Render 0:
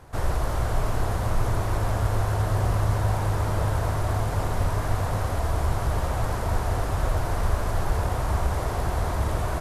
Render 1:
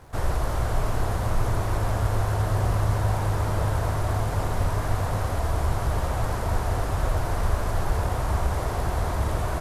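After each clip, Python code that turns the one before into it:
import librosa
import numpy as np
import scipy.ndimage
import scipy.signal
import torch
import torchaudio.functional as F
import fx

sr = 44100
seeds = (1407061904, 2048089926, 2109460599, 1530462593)

y = fx.dmg_crackle(x, sr, seeds[0], per_s=220.0, level_db=-48.0)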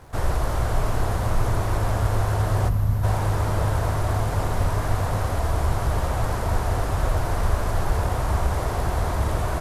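y = fx.spec_box(x, sr, start_s=2.69, length_s=0.35, low_hz=270.0, high_hz=11000.0, gain_db=-10)
y = F.gain(torch.from_numpy(y), 2.0).numpy()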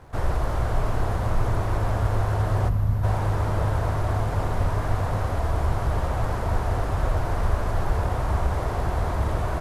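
y = fx.high_shelf(x, sr, hz=4500.0, db=-9.0)
y = F.gain(torch.from_numpy(y), -1.0).numpy()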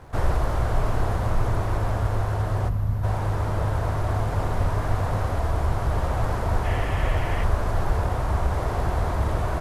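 y = fx.rider(x, sr, range_db=10, speed_s=0.5)
y = fx.spec_box(y, sr, start_s=6.65, length_s=0.79, low_hz=1700.0, high_hz=3400.0, gain_db=9)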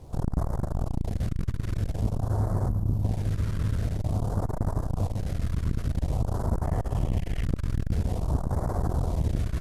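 y = fx.phaser_stages(x, sr, stages=2, low_hz=750.0, high_hz=2600.0, hz=0.49, feedback_pct=25)
y = fx.transformer_sat(y, sr, knee_hz=200.0)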